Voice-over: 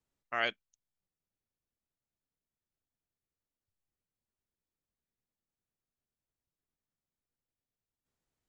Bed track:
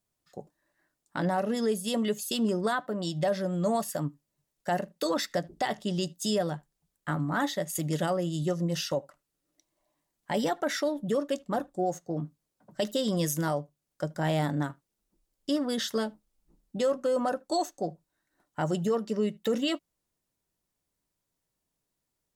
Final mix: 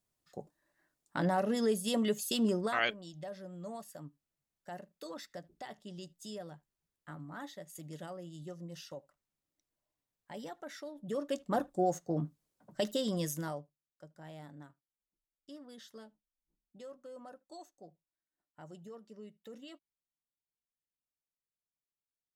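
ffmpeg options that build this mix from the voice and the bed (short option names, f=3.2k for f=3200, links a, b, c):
-filter_complex "[0:a]adelay=2400,volume=0.5dB[a];[1:a]volume=13dB,afade=t=out:st=2.5:d=0.38:silence=0.199526,afade=t=in:st=10.94:d=0.68:silence=0.16788,afade=t=out:st=12.43:d=1.49:silence=0.0891251[b];[a][b]amix=inputs=2:normalize=0"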